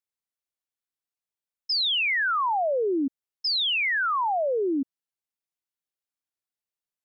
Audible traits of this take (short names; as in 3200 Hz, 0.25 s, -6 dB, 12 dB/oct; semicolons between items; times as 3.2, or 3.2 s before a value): noise floor -93 dBFS; spectral tilt -2.5 dB/oct